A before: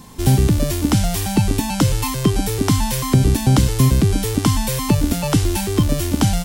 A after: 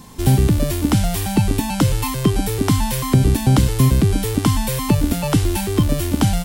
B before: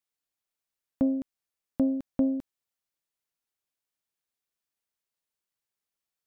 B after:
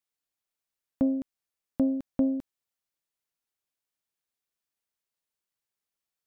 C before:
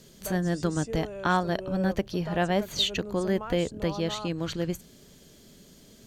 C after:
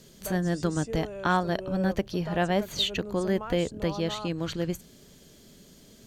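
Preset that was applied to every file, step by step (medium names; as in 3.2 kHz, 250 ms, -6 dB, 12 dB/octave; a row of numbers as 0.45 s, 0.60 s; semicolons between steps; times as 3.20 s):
dynamic bell 6 kHz, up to -4 dB, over -40 dBFS, Q 1.4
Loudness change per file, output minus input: 0.0 LU, 0.0 LU, 0.0 LU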